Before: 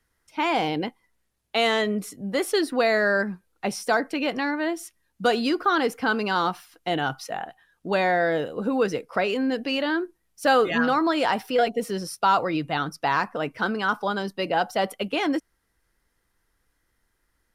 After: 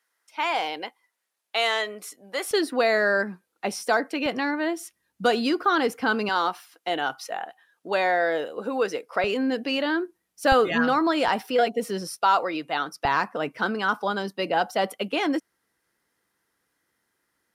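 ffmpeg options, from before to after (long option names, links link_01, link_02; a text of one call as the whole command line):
ffmpeg -i in.wav -af "asetnsamples=nb_out_samples=441:pad=0,asendcmd='2.51 highpass f 230;4.26 highpass f 110;6.29 highpass f 370;9.24 highpass f 140;10.52 highpass f 56;11.28 highpass f 160;12.16 highpass f 370;13.05 highpass f 170',highpass=640" out.wav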